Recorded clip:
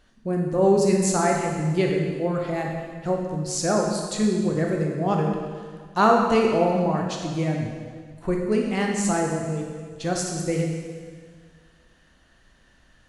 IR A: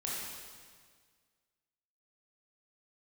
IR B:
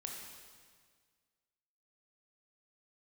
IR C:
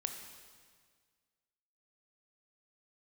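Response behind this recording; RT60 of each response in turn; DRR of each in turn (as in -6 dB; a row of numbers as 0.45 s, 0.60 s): B; 1.7 s, 1.7 s, 1.7 s; -5.5 dB, 0.0 dB, 5.0 dB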